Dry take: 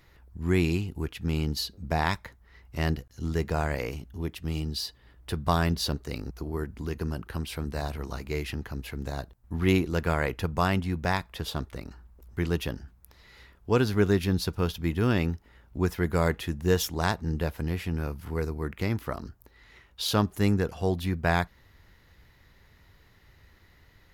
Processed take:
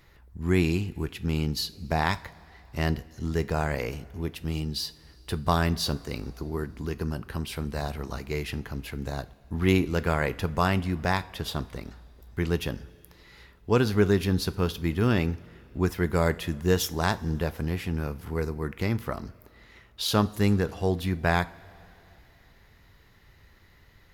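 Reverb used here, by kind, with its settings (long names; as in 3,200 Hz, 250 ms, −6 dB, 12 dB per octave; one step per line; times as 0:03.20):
coupled-rooms reverb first 0.34 s, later 3.1 s, from −17 dB, DRR 13.5 dB
level +1 dB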